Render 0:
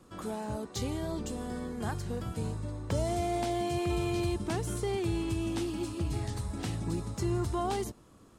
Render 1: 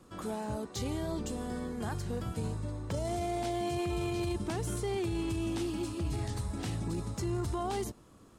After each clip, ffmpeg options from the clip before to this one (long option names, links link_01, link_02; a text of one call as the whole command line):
ffmpeg -i in.wav -af "alimiter=level_in=2dB:limit=-24dB:level=0:latency=1:release=13,volume=-2dB" out.wav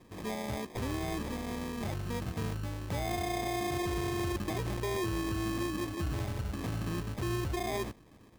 ffmpeg -i in.wav -af "acrusher=samples=31:mix=1:aa=0.000001" out.wav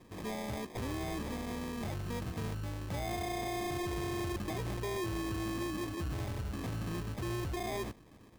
ffmpeg -i in.wav -af "asoftclip=type=tanh:threshold=-31.5dB" out.wav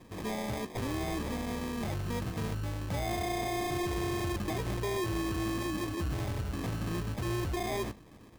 ffmpeg -i in.wav -af "flanger=delay=1.2:depth=6.3:regen=-82:speed=0.7:shape=sinusoidal,volume=8dB" out.wav